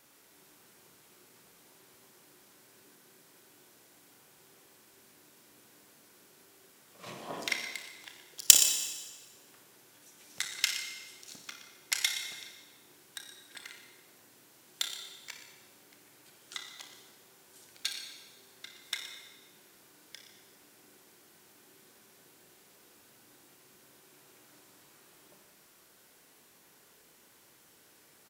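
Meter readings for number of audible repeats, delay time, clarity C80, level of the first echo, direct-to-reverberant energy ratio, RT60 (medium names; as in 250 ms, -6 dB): 1, 121 ms, 6.0 dB, -14.0 dB, 2.5 dB, 1.3 s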